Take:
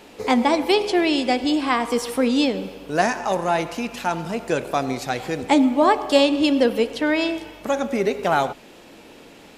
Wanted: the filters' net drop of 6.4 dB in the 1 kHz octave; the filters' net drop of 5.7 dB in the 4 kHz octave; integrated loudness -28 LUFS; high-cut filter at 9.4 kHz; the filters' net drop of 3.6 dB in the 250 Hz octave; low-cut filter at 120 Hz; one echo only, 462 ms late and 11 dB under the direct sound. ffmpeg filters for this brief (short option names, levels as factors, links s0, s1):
-af "highpass=120,lowpass=9400,equalizer=f=250:t=o:g=-3.5,equalizer=f=1000:t=o:g=-8.5,equalizer=f=4000:t=o:g=-7,aecho=1:1:462:0.282,volume=0.668"